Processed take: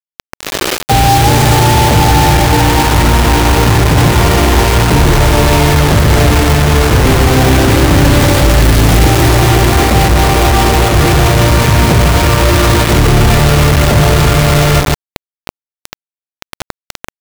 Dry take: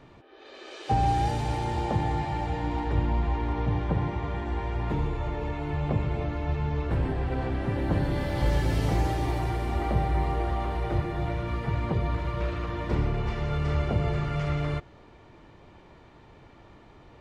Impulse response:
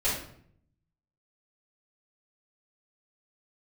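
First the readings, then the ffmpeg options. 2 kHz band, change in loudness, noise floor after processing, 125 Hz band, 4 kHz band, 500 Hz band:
+24.5 dB, +20.0 dB, below −85 dBFS, +19.0 dB, +29.0 dB, +20.5 dB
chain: -filter_complex "[0:a]equalizer=frequency=2100:width=0.32:gain=-3.5,areverse,acompressor=threshold=-35dB:ratio=8,areverse,aeval=exprs='val(0)+0.000562*(sin(2*PI*60*n/s)+sin(2*PI*2*60*n/s)/2+sin(2*PI*3*60*n/s)/3+sin(2*PI*4*60*n/s)/4+sin(2*PI*5*60*n/s)/5)':channel_layout=same,asplit=2[link_01][link_02];[link_02]aecho=0:1:145|290|435:0.473|0.0899|0.0171[link_03];[link_01][link_03]amix=inputs=2:normalize=0,acrusher=bits=6:mix=0:aa=0.000001,apsyclip=33dB,volume=-2dB"

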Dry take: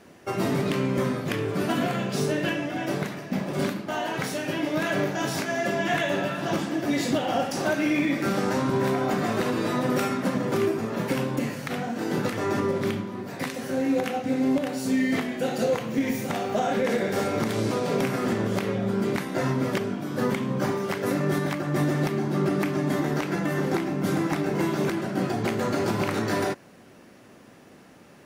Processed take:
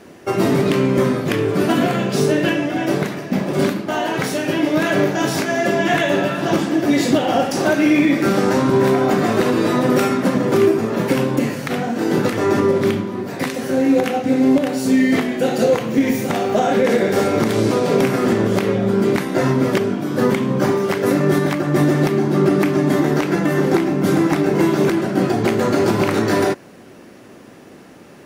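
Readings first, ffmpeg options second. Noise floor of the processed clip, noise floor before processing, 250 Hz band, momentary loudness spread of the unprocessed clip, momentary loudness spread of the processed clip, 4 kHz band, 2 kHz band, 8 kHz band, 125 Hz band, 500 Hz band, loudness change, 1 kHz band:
−42 dBFS, −51 dBFS, +9.0 dB, 4 LU, 5 LU, +7.0 dB, +7.0 dB, +7.0 dB, +7.5 dB, +9.5 dB, +9.0 dB, +7.5 dB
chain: -af "equalizer=frequency=360:width=1.5:gain=4,volume=7dB"

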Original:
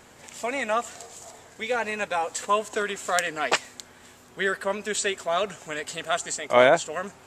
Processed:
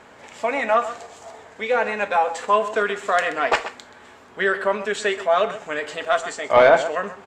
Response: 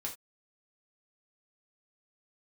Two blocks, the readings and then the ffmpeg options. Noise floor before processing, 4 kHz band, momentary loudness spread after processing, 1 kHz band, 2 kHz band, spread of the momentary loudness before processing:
−52 dBFS, −0.5 dB, 12 LU, +6.0 dB, +4.5 dB, 21 LU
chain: -filter_complex "[0:a]highshelf=frequency=8200:gain=-5.5,asplit=2[link_01][link_02];[link_02]adelay=128.3,volume=-14dB,highshelf=frequency=4000:gain=-2.89[link_03];[link_01][link_03]amix=inputs=2:normalize=0,asplit=2[link_04][link_05];[link_05]highpass=frequency=720:poles=1,volume=13dB,asoftclip=type=tanh:threshold=-3dB[link_06];[link_04][link_06]amix=inputs=2:normalize=0,lowpass=frequency=1200:poles=1,volume=-6dB,asplit=2[link_07][link_08];[1:a]atrim=start_sample=2205[link_09];[link_08][link_09]afir=irnorm=-1:irlink=0,volume=-3.5dB[link_10];[link_07][link_10]amix=inputs=2:normalize=0,volume=-1dB"

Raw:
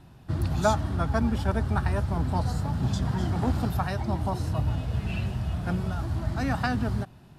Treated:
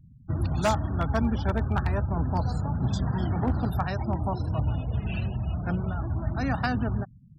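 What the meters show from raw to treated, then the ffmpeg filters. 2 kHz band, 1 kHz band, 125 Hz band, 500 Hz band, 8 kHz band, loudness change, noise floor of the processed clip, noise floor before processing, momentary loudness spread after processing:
−0.5 dB, −0.5 dB, 0.0 dB, −0.5 dB, can't be measured, 0.0 dB, −52 dBFS, −51 dBFS, 4 LU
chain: -af "afftfilt=real='re*gte(hypot(re,im),0.0112)':imag='im*gte(hypot(re,im),0.0112)':win_size=1024:overlap=0.75,aeval=exprs='0.158*(abs(mod(val(0)/0.158+3,4)-2)-1)':channel_layout=same"

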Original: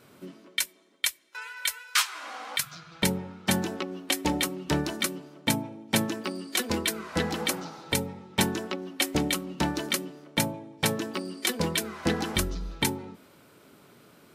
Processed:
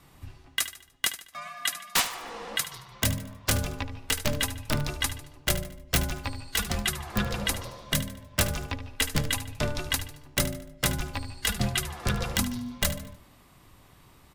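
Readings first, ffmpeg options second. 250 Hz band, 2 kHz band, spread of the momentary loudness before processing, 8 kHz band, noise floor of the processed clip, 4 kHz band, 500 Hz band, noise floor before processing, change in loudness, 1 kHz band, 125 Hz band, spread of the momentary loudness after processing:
−5.0 dB, 0.0 dB, 7 LU, +1.0 dB, −56 dBFS, −0.5 dB, −3.5 dB, −57 dBFS, −0.5 dB, −2.0 dB, +3.5 dB, 8 LU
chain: -af "aeval=exprs='(mod(4.73*val(0)+1,2)-1)/4.73':channel_layout=same,aecho=1:1:74|148|222|296:0.224|0.0895|0.0358|0.0143,afreqshift=-290"

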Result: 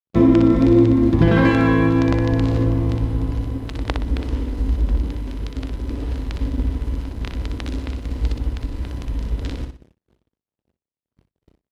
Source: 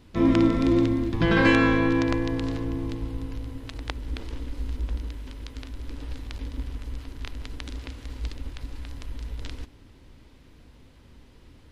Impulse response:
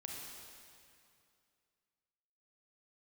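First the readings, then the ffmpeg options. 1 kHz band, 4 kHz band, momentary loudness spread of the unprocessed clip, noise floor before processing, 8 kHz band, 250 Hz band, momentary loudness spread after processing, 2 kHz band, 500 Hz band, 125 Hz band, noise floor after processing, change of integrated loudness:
+4.0 dB, +0.5 dB, 19 LU, −52 dBFS, can't be measured, +7.0 dB, 15 LU, +0.5 dB, +6.5 dB, +10.5 dB, below −85 dBFS, +5.5 dB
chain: -filter_complex "[0:a]aeval=exprs='sgn(val(0))*max(abs(val(0))-0.00531,0)':channel_layout=same,tiltshelf=frequency=940:gain=5.5,acompressor=threshold=-19dB:ratio=5,asplit=2[link_01][link_02];[link_02]aecho=0:1:61|122|183|244:0.501|0.155|0.0482|0.0149[link_03];[link_01][link_03]amix=inputs=2:normalize=0,agate=range=-33dB:threshold=-49dB:ratio=3:detection=peak,highpass=44,volume=8.5dB"

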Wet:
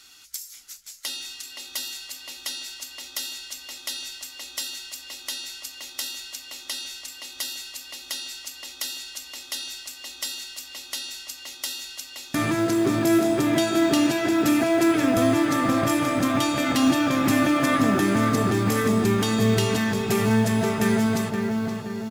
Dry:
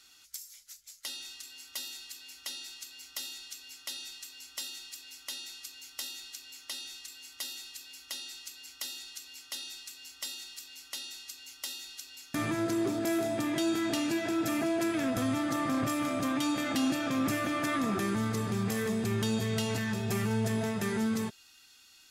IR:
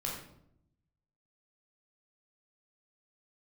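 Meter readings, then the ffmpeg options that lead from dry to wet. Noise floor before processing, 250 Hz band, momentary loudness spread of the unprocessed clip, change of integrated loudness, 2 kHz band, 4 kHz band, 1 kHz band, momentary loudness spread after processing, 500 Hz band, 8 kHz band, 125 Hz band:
−58 dBFS, +9.5 dB, 14 LU, +9.5 dB, +9.0 dB, +8.5 dB, +10.0 dB, 15 LU, +10.0 dB, +8.0 dB, +8.5 dB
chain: -filter_complex "[0:a]asplit=2[link_01][link_02];[link_02]adelay=522,lowpass=frequency=2000:poles=1,volume=-3.5dB,asplit=2[link_03][link_04];[link_04]adelay=522,lowpass=frequency=2000:poles=1,volume=0.54,asplit=2[link_05][link_06];[link_06]adelay=522,lowpass=frequency=2000:poles=1,volume=0.54,asplit=2[link_07][link_08];[link_08]adelay=522,lowpass=frequency=2000:poles=1,volume=0.54,asplit=2[link_09][link_10];[link_10]adelay=522,lowpass=frequency=2000:poles=1,volume=0.54,asplit=2[link_11][link_12];[link_12]adelay=522,lowpass=frequency=2000:poles=1,volume=0.54,asplit=2[link_13][link_14];[link_14]adelay=522,lowpass=frequency=2000:poles=1,volume=0.54[link_15];[link_01][link_03][link_05][link_07][link_09][link_11][link_13][link_15]amix=inputs=8:normalize=0,acrusher=bits=8:mode=log:mix=0:aa=0.000001,volume=8dB"

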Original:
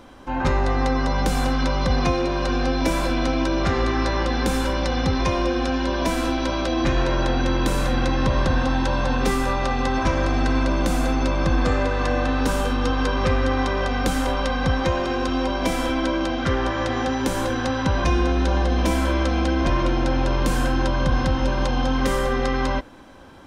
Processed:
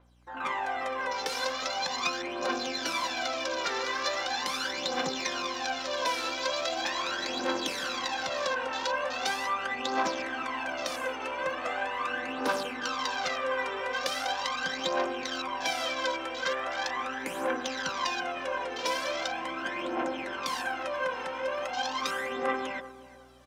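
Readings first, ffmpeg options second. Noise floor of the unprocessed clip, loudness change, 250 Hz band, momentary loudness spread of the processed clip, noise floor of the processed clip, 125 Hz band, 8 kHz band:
−25 dBFS, −9.0 dB, −17.5 dB, 3 LU, −38 dBFS, −32.0 dB, −3.0 dB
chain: -filter_complex "[0:a]highpass=730,afwtdn=0.0158,equalizer=frequency=1100:width=0.46:gain=-7,areverse,acompressor=mode=upward:threshold=-53dB:ratio=2.5,areverse,aphaser=in_gain=1:out_gain=1:delay=2.3:decay=0.64:speed=0.4:type=triangular,aeval=exprs='val(0)+0.000891*(sin(2*PI*60*n/s)+sin(2*PI*2*60*n/s)/2+sin(2*PI*3*60*n/s)/3+sin(2*PI*4*60*n/s)/4+sin(2*PI*5*60*n/s)/5)':channel_layout=same,asplit=2[link_01][link_02];[link_02]adelay=359,lowpass=frequency=1100:poles=1,volume=-14.5dB,asplit=2[link_03][link_04];[link_04]adelay=359,lowpass=frequency=1100:poles=1,volume=0.38,asplit=2[link_05][link_06];[link_06]adelay=359,lowpass=frequency=1100:poles=1,volume=0.38,asplit=2[link_07][link_08];[link_08]adelay=359,lowpass=frequency=1100:poles=1,volume=0.38[link_09];[link_03][link_05][link_07][link_09]amix=inputs=4:normalize=0[link_10];[link_01][link_10]amix=inputs=2:normalize=0,adynamicequalizer=threshold=0.00447:dfrequency=5500:dqfactor=0.7:tfrequency=5500:tqfactor=0.7:attack=5:release=100:ratio=0.375:range=2.5:mode=boostabove:tftype=highshelf"

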